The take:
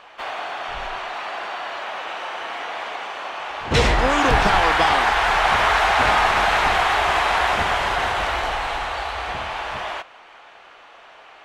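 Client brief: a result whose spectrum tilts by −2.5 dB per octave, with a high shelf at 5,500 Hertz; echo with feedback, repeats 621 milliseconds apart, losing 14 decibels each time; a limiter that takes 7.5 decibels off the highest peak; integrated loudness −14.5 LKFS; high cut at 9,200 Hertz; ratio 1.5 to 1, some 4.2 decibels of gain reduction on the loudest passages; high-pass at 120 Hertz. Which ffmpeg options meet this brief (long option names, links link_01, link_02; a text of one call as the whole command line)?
ffmpeg -i in.wav -af "highpass=120,lowpass=9200,highshelf=frequency=5500:gain=4.5,acompressor=threshold=-25dB:ratio=1.5,alimiter=limit=-15.5dB:level=0:latency=1,aecho=1:1:621|1242:0.2|0.0399,volume=11dB" out.wav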